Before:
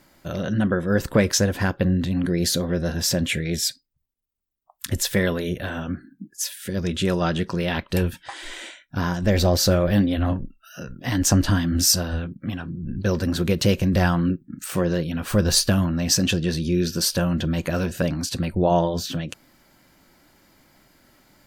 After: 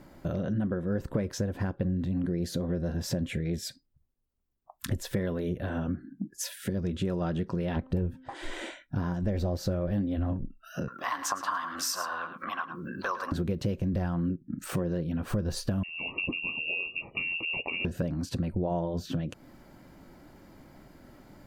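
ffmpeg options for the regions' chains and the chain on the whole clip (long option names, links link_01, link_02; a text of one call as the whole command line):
ffmpeg -i in.wav -filter_complex "[0:a]asettb=1/sr,asplit=3[link_01][link_02][link_03];[link_01]atrim=end=7.764[link_04];[link_02]atrim=start=7.76:end=8.35,asetpts=PTS-STARTPTS,afade=type=in:duration=0.004:curve=qsin,afade=type=out:start_time=0.586:duration=0.004:curve=qsin,tiltshelf=frequency=1100:gain=6,bandreject=frequency=259.7:width_type=h:width=4,bandreject=frequency=519.4:width_type=h:width=4,bandreject=frequency=779.1:width_type=h:width=4,bandreject=frequency=1038.8:width_type=h:width=4,bandreject=frequency=1298.5:width_type=h:width=4,bandreject=frequency=1558.2:width_type=h:width=4,bandreject=frequency=1817.9:width_type=h:width=4[link_05];[link_03]atrim=start=8.346[link_06];[link_04][link_05]acrossfade=duration=0.004:curve1=hsin:curve2=qsin[link_07];[link_07][link_06]acrossfade=duration=0.004:curve1=qsin:curve2=hsin,asettb=1/sr,asplit=3[link_08][link_09][link_10];[link_08]atrim=end=10.884[link_11];[link_09]atrim=start=10.88:end=13.32,asetpts=PTS-STARTPTS,afade=type=in:duration=0.004:curve=qsin,afade=type=out:start_time=2.436:duration=0.004:curve=qsin,highpass=frequency=1100:width_type=q:width=9.2,acompressor=mode=upward:threshold=-29dB:ratio=2.5:attack=3.2:release=140:knee=2.83:detection=peak,aecho=1:1:108:0.282,atrim=end_sample=107604[link_12];[link_10]atrim=start=13.316[link_13];[link_11][link_12]acrossfade=duration=0.004:curve1=hsin:curve2=qsin[link_14];[link_14][link_13]acrossfade=duration=0.004:curve1=qsin:curve2=hsin,asettb=1/sr,asplit=3[link_15][link_16][link_17];[link_15]atrim=end=15.834[link_18];[link_16]atrim=start=15.83:end=17.85,asetpts=PTS-STARTPTS,afade=type=in:duration=0.004:curve=qsin,afade=type=out:start_time=2.016:duration=0.004:curve=qsin,lowpass=frequency=2500:width_type=q:width=0.5098,lowpass=frequency=2500:width_type=q:width=0.6013,lowpass=frequency=2500:width_type=q:width=0.9,lowpass=frequency=2500:width_type=q:width=2.563,afreqshift=-2900,asuperstop=centerf=1500:order=4:qfactor=1[link_19];[link_17]atrim=start=17.846[link_20];[link_18][link_19]acrossfade=duration=0.004:curve1=hsin:curve2=qsin[link_21];[link_21][link_20]acrossfade=duration=0.004:curve1=qsin:curve2=hsin,tiltshelf=frequency=1400:gain=7.5,acompressor=threshold=-30dB:ratio=4" out.wav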